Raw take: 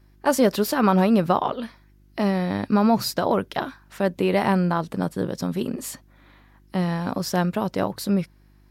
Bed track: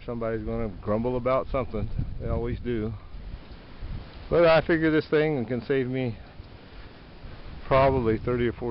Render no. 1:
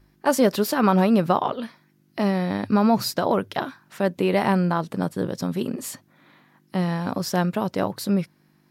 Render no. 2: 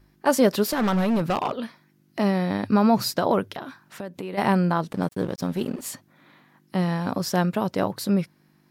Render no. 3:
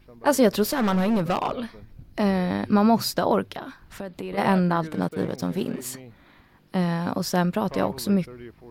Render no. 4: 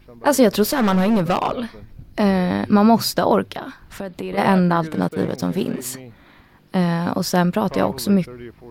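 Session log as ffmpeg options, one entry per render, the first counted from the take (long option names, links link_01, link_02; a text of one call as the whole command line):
ffmpeg -i in.wav -af "bandreject=frequency=50:width_type=h:width=4,bandreject=frequency=100:width_type=h:width=4" out.wav
ffmpeg -i in.wav -filter_complex "[0:a]asettb=1/sr,asplit=3[link_01][link_02][link_03];[link_01]atrim=end=0.634[link_04];[link_02]atrim=start=0.63:end=2.19,asetpts=PTS-STARTPTS,afade=type=in:duration=0.004:curve=qsin,afade=type=out:start_time=1.556:duration=0.004:curve=qsin,asoftclip=type=hard:threshold=-19dB[link_05];[link_03]atrim=start=2.186[link_06];[link_04][link_05]acrossfade=duration=0.004:curve1=hsin:curve2=qsin[link_07];[link_07][link_06]acrossfade=duration=0.004:curve1=qsin:curve2=hsin,asplit=3[link_08][link_09][link_10];[link_08]afade=type=out:start_time=3.49:duration=0.02[link_11];[link_09]acompressor=threshold=-31dB:ratio=4:attack=3.2:release=140:knee=1:detection=peak,afade=type=in:start_time=3.49:duration=0.02,afade=type=out:start_time=4.37:duration=0.02[link_12];[link_10]afade=type=in:start_time=4.37:duration=0.02[link_13];[link_11][link_12][link_13]amix=inputs=3:normalize=0,asettb=1/sr,asplit=3[link_14][link_15][link_16];[link_14]atrim=end=4.924[link_17];[link_15]atrim=start=4.92:end=5.86,asetpts=PTS-STARTPTS,afade=type=in:duration=0.004:curve=qsin,afade=type=out:start_time=0.936:duration=0.004:curve=qsin,aeval=exprs='sgn(val(0))*max(abs(val(0))-0.00708,0)':channel_layout=same[link_18];[link_16]atrim=start=5.856[link_19];[link_17][link_18]acrossfade=duration=0.004:curve1=hsin:curve2=qsin[link_20];[link_20][link_19]acrossfade=duration=0.004:curve1=qsin:curve2=hsin" out.wav
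ffmpeg -i in.wav -i bed.wav -filter_complex "[1:a]volume=-16dB[link_01];[0:a][link_01]amix=inputs=2:normalize=0" out.wav
ffmpeg -i in.wav -af "volume=5dB,alimiter=limit=-3dB:level=0:latency=1" out.wav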